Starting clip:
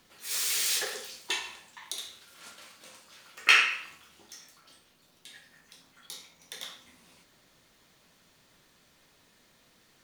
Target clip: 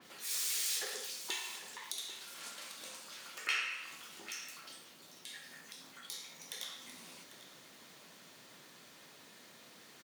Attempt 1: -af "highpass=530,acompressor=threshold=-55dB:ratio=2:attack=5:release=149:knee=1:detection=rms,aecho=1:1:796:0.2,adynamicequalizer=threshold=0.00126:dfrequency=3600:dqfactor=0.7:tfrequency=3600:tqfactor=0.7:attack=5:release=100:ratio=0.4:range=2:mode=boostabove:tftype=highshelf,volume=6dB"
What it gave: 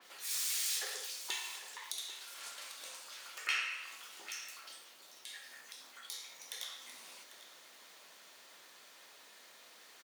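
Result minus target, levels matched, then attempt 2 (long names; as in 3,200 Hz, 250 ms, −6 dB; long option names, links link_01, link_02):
125 Hz band −16.5 dB
-af "highpass=170,acompressor=threshold=-55dB:ratio=2:attack=5:release=149:knee=1:detection=rms,aecho=1:1:796:0.2,adynamicequalizer=threshold=0.00126:dfrequency=3600:dqfactor=0.7:tfrequency=3600:tqfactor=0.7:attack=5:release=100:ratio=0.4:range=2:mode=boostabove:tftype=highshelf,volume=6dB"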